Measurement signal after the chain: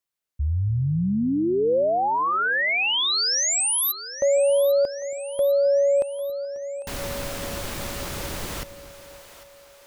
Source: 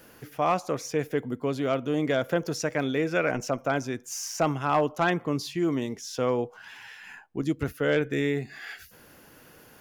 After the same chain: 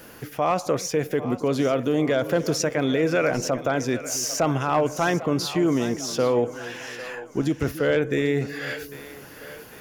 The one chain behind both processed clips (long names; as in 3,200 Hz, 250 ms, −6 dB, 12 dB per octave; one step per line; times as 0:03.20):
brickwall limiter −21.5 dBFS
dynamic equaliser 520 Hz, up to +3 dB, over −42 dBFS, Q 2.4
on a send: echo with a time of its own for lows and highs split 460 Hz, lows 276 ms, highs 799 ms, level −14 dB
on the sum: level +7.5 dB